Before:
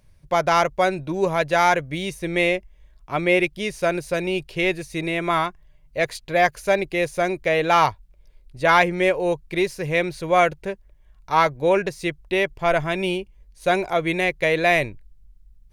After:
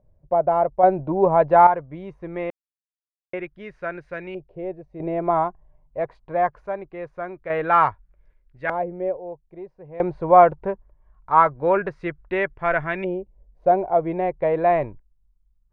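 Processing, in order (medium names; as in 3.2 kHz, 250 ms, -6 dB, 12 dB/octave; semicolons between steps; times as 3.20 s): LFO low-pass saw up 0.23 Hz 620–1800 Hz; random-step tremolo 1.2 Hz, depth 100%; trim +1 dB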